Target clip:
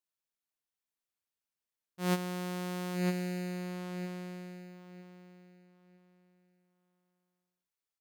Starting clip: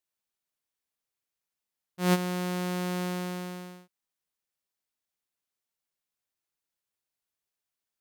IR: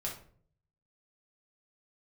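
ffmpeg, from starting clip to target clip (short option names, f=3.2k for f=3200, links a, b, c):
-filter_complex "[0:a]asplit=2[a][b];[b]adelay=956,lowpass=f=4.9k:p=1,volume=-3.5dB,asplit=2[c][d];[d]adelay=956,lowpass=f=4.9k:p=1,volume=0.25,asplit=2[e][f];[f]adelay=956,lowpass=f=4.9k:p=1,volume=0.25,asplit=2[g][h];[h]adelay=956,lowpass=f=4.9k:p=1,volume=0.25[i];[a][c][e][g][i]amix=inputs=5:normalize=0,volume=-6dB"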